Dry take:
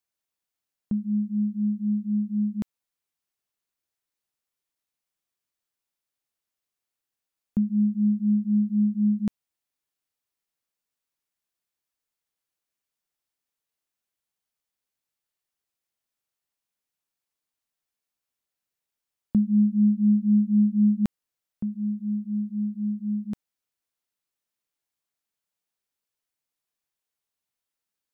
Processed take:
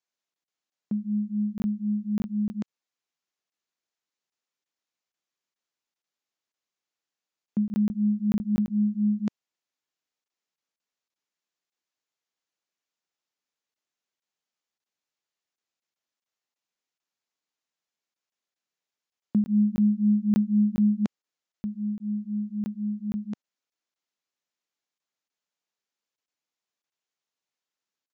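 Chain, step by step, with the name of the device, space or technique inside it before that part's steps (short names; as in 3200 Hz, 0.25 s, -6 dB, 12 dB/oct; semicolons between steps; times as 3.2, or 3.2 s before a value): call with lost packets (HPF 180 Hz 12 dB/oct; downsampling 16000 Hz; packet loss random)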